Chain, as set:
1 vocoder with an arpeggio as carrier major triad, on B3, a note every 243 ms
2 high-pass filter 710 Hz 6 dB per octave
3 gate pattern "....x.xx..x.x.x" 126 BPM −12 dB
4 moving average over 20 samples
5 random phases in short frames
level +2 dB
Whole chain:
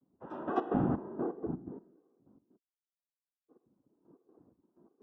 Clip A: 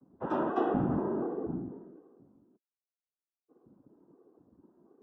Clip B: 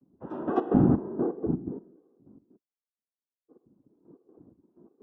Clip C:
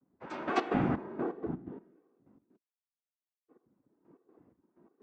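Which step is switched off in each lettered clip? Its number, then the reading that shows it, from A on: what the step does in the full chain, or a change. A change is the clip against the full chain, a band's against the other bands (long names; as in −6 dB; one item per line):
3, 125 Hz band −2.5 dB
2, change in momentary loudness spread +1 LU
4, 2 kHz band +9.5 dB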